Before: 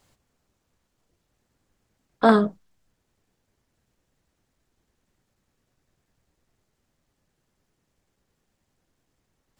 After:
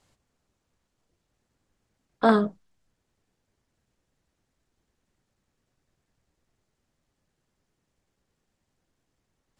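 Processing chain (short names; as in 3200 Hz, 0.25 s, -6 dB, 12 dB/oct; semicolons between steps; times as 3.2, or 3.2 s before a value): LPF 11000 Hz; gain -3 dB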